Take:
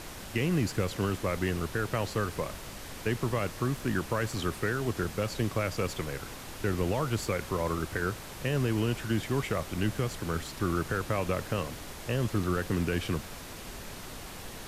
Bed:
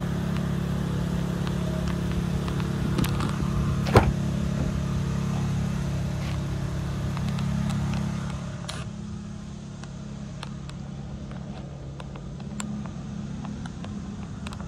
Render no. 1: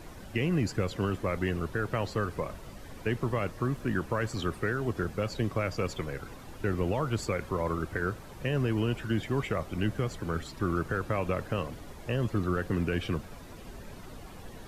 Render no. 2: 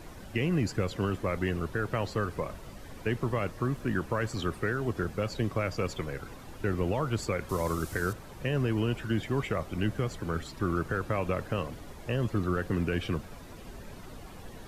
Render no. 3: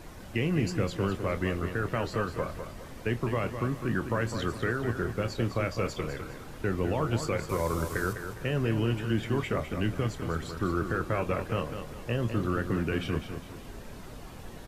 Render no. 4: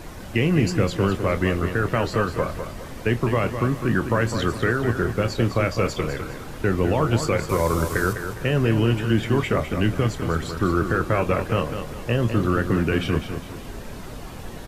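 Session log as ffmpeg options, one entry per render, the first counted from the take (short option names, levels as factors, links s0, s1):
-af "afftdn=nr=11:nf=-43"
-filter_complex "[0:a]asettb=1/sr,asplit=3[s0][s1][s2];[s0]atrim=end=7.494[s3];[s1]atrim=start=7.49:end=8.13,asetpts=PTS-STARTPTS,afade=t=in:d=0.004:c=qsin,afade=t=out:st=0.636:d=0.004:c=qsin,bass=f=250:g=1,treble=f=4000:g=14[s4];[s2]atrim=start=8.126[s5];[s3][s4]acrossfade=d=0.004:c1=hsin:c2=qsin[s6];[s6][s5]acrossfade=d=0.004:c1=qsin:c2=hsin"
-filter_complex "[0:a]asplit=2[s0][s1];[s1]adelay=26,volume=0.282[s2];[s0][s2]amix=inputs=2:normalize=0,aecho=1:1:204|408|612|816:0.376|0.135|0.0487|0.0175"
-af "volume=2.51"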